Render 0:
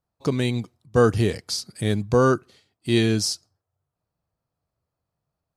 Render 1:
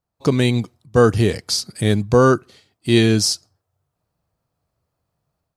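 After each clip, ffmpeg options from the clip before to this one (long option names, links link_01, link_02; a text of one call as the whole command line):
ffmpeg -i in.wav -af "dynaudnorm=framelen=130:gausssize=3:maxgain=7dB" out.wav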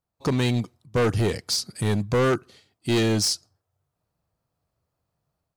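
ffmpeg -i in.wav -af "asoftclip=type=hard:threshold=-14.5dB,volume=-3.5dB" out.wav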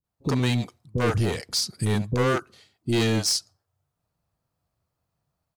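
ffmpeg -i in.wav -filter_complex "[0:a]acrossover=split=430[link_01][link_02];[link_02]adelay=40[link_03];[link_01][link_03]amix=inputs=2:normalize=0" out.wav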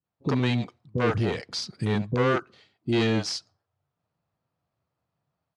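ffmpeg -i in.wav -af "highpass=110,lowpass=3700" out.wav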